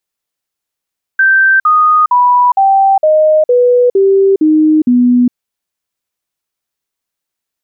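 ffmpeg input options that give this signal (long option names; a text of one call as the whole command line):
ffmpeg -f lavfi -i "aevalsrc='0.562*clip(min(mod(t,0.46),0.41-mod(t,0.46))/0.005,0,1)*sin(2*PI*1560*pow(2,-floor(t/0.46)/3)*mod(t,0.46))':duration=4.14:sample_rate=44100" out.wav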